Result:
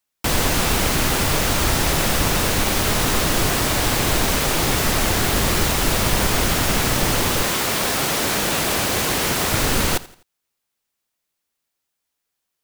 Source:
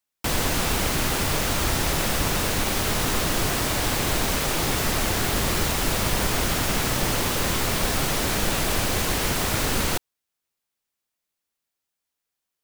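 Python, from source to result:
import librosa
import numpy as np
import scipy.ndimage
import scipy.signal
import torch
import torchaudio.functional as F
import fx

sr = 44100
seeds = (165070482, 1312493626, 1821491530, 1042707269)

y = fx.highpass(x, sr, hz=fx.line((7.42, 300.0), (9.51, 120.0)), slope=6, at=(7.42, 9.51), fade=0.02)
y = fx.echo_feedback(y, sr, ms=84, feedback_pct=39, wet_db=-19.5)
y = F.gain(torch.from_numpy(y), 4.5).numpy()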